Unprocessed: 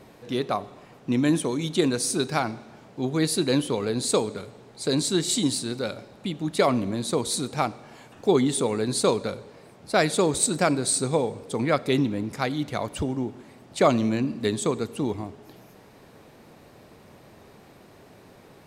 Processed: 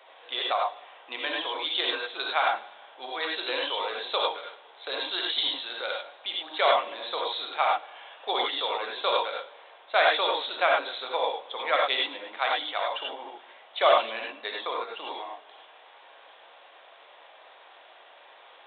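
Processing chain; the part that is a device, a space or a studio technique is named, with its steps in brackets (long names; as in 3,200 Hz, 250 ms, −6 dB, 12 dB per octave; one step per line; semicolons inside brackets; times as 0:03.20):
0:14.36–0:14.88: parametric band 3,100 Hz −9 dB 0.46 octaves
reverb whose tail is shaped and stops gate 120 ms rising, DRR −1.5 dB
musical greeting card (downsampling to 8,000 Hz; high-pass filter 650 Hz 24 dB per octave; parametric band 3,400 Hz +7.5 dB 0.45 octaves)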